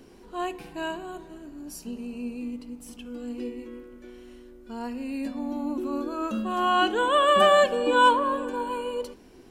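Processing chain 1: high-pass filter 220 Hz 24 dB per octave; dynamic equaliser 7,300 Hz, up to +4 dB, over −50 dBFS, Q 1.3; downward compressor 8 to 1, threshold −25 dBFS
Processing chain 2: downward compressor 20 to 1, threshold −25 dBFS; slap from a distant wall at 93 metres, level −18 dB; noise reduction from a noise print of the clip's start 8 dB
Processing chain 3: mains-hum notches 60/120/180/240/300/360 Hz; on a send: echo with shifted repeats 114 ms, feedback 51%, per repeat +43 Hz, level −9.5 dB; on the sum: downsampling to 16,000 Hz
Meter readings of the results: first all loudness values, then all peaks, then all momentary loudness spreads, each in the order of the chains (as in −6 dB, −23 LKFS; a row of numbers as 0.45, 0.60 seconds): −32.0, −32.5, −24.0 LKFS; −17.5, −18.5, −8.0 dBFS; 16, 15, 23 LU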